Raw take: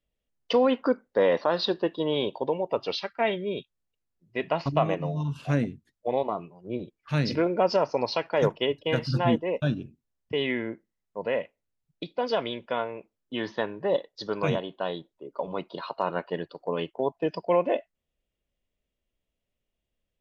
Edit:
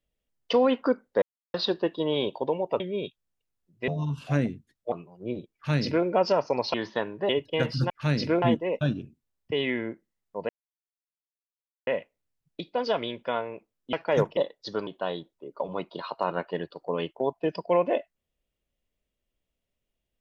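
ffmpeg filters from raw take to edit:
ffmpeg -i in.wav -filter_complex "[0:a]asplit=14[link_01][link_02][link_03][link_04][link_05][link_06][link_07][link_08][link_09][link_10][link_11][link_12][link_13][link_14];[link_01]atrim=end=1.22,asetpts=PTS-STARTPTS,afade=type=out:start_time=1.216:duration=0.004:curve=hsin[link_15];[link_02]atrim=start=1.22:end=1.54,asetpts=PTS-STARTPTS,volume=0[link_16];[link_03]atrim=start=1.54:end=2.802,asetpts=PTS-STARTPTS,afade=type=in:duration=0.004:curve=hsin[link_17];[link_04]atrim=start=3.328:end=4.412[link_18];[link_05]atrim=start=5.058:end=6.102[link_19];[link_06]atrim=start=6.358:end=8.182[link_20];[link_07]atrim=start=13.358:end=13.912[link_21];[link_08]atrim=start=8.618:end=9.232[link_22];[link_09]atrim=start=6.978:end=7.502[link_23];[link_10]atrim=start=9.228:end=11.3,asetpts=PTS-STARTPTS,afade=type=out:start_time=2.068:duration=0.004:curve=hsin,apad=pad_dur=1.38[link_24];[link_11]atrim=start=11.3:end=13.362,asetpts=PTS-STARTPTS,afade=type=in:duration=0.004:curve=hsin[link_25];[link_12]atrim=start=8.178:end=8.622[link_26];[link_13]atrim=start=13.908:end=14.412[link_27];[link_14]atrim=start=14.658[link_28];[link_15][link_16][link_17]concat=n=3:v=0:a=1[link_29];[link_29][link_18]acrossfade=duration=0.004:curve1=hsin:curve2=hsin[link_30];[link_30][link_19]acrossfade=duration=0.004:curve1=hsin:curve2=hsin[link_31];[link_31][link_20]acrossfade=duration=0.004:curve1=hsin:curve2=hsin[link_32];[link_32][link_21]acrossfade=duration=0.004:curve1=hsin:curve2=hsin[link_33];[link_33][link_22]acrossfade=duration=0.004:curve1=hsin:curve2=hsin[link_34];[link_34][link_23]acrossfade=duration=0.004:curve1=hsin:curve2=hsin[link_35];[link_24][link_25]concat=n=2:v=0:a=1[link_36];[link_35][link_36]acrossfade=duration=0.004:curve1=hsin:curve2=hsin[link_37];[link_37][link_26]acrossfade=duration=0.004:curve1=hsin:curve2=hsin[link_38];[link_38][link_27]acrossfade=duration=0.004:curve1=hsin:curve2=hsin[link_39];[link_39][link_28]acrossfade=duration=0.004:curve1=hsin:curve2=hsin" out.wav

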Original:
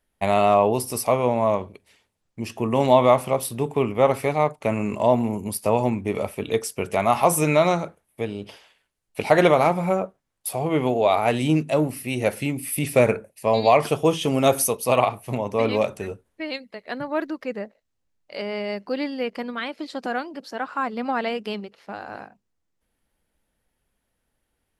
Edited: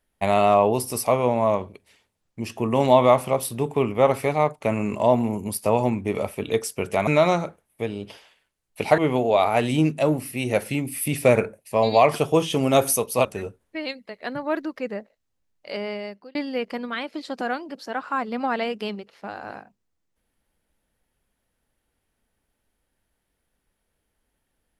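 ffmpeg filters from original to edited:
ffmpeg -i in.wav -filter_complex "[0:a]asplit=5[link_01][link_02][link_03][link_04][link_05];[link_01]atrim=end=7.072[link_06];[link_02]atrim=start=7.458:end=9.372[link_07];[link_03]atrim=start=10.688:end=14.962[link_08];[link_04]atrim=start=15.898:end=19,asetpts=PTS-STARTPTS,afade=type=out:start_time=2.562:duration=0.54[link_09];[link_05]atrim=start=19,asetpts=PTS-STARTPTS,afade=type=in:duration=0.004:curve=hsin[link_10];[link_06][link_07]acrossfade=duration=0.004:curve1=hsin:curve2=hsin[link_11];[link_11][link_08]acrossfade=duration=0.004:curve1=hsin:curve2=hsin[link_12];[link_09][link_10]concat=n=2:v=0:a=1[link_13];[link_12][link_13]acrossfade=duration=0.004:curve1=hsin:curve2=hsin" out.wav

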